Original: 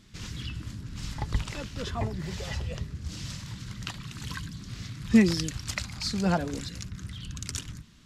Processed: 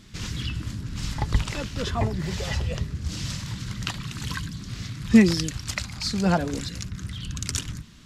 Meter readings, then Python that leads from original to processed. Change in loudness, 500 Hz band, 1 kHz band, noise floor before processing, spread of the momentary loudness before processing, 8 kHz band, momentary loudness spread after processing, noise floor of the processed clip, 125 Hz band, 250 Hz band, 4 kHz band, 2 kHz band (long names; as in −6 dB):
+4.5 dB, +4.5 dB, +4.5 dB, −45 dBFS, 14 LU, +5.0 dB, 13 LU, −39 dBFS, +5.0 dB, +4.0 dB, +4.5 dB, +4.5 dB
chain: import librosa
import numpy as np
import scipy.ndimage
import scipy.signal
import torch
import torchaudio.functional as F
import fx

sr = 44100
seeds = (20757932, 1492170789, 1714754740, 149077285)

y = fx.rider(x, sr, range_db=3, speed_s=2.0)
y = y * librosa.db_to_amplitude(3.5)